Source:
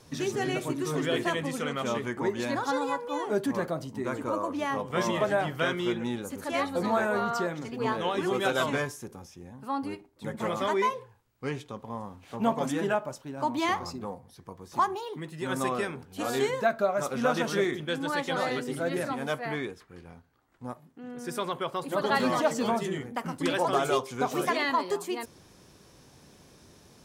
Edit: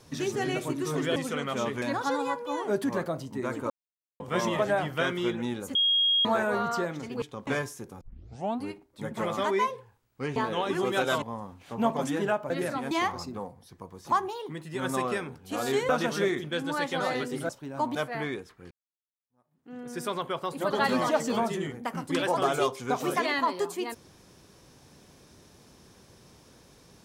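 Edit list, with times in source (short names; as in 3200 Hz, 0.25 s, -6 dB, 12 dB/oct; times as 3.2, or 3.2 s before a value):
1.16–1.45 cut
2.11–2.44 cut
4.32–4.82 mute
6.37–6.87 bleep 3270 Hz -20.5 dBFS
7.84–8.7 swap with 11.59–11.84
9.24 tape start 0.62 s
13.12–13.58 swap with 18.85–19.26
16.56–17.25 cut
20.02–21.02 fade in exponential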